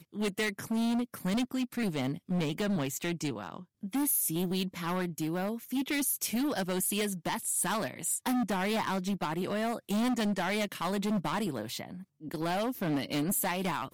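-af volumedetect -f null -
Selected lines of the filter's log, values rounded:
mean_volume: -32.1 dB
max_volume: -22.8 dB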